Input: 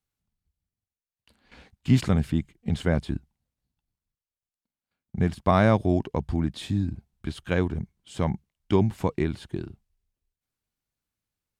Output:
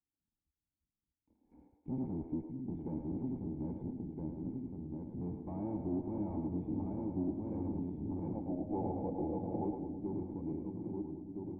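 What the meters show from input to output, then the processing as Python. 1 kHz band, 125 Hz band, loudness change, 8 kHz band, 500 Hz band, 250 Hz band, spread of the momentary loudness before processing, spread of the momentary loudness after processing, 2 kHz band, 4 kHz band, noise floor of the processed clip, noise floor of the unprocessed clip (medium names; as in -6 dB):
-14.5 dB, -15.0 dB, -13.0 dB, under -30 dB, -13.0 dB, -8.5 dB, 16 LU, 5 LU, under -40 dB, under -40 dB, under -85 dBFS, under -85 dBFS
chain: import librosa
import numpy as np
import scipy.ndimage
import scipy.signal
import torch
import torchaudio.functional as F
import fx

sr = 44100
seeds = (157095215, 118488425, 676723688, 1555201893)

p1 = fx.reverse_delay_fb(x, sr, ms=658, feedback_pct=63, wet_db=-3)
p2 = fx.tube_stage(p1, sr, drive_db=29.0, bias=0.45)
p3 = fx.spec_box(p2, sr, start_s=8.35, length_s=1.3, low_hz=440.0, high_hz=880.0, gain_db=11)
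p4 = fx.formant_cascade(p3, sr, vowel='u')
p5 = p4 + fx.echo_split(p4, sr, split_hz=320.0, low_ms=613, high_ms=107, feedback_pct=52, wet_db=-5.5, dry=0)
y = F.gain(torch.from_numpy(p5), 3.0).numpy()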